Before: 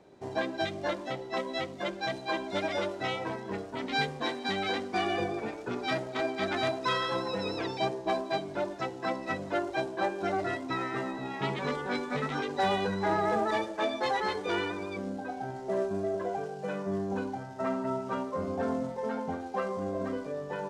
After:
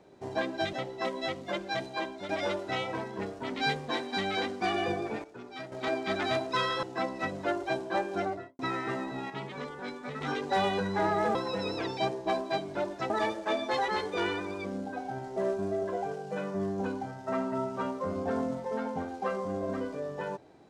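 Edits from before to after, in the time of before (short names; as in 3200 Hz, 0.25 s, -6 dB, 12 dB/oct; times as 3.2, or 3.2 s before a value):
0.73–1.05 cut
1.99–2.61 fade out equal-power, to -10 dB
5.56–6.04 gain -11 dB
7.15–8.9 move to 13.42
10.22–10.66 studio fade out
11.37–12.28 gain -7 dB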